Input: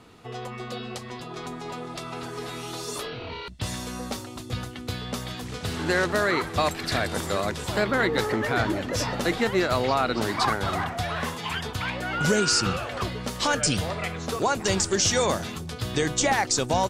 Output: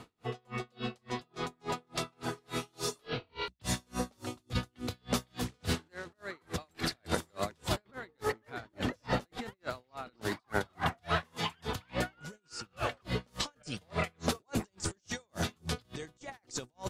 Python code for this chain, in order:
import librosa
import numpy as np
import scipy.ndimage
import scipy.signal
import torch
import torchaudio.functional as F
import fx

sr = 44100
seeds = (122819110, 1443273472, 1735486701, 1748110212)

y = fx.over_compress(x, sr, threshold_db=-29.0, ratio=-0.5)
y = y * 10.0 ** (-40 * (0.5 - 0.5 * np.cos(2.0 * np.pi * 3.5 * np.arange(len(y)) / sr)) / 20.0)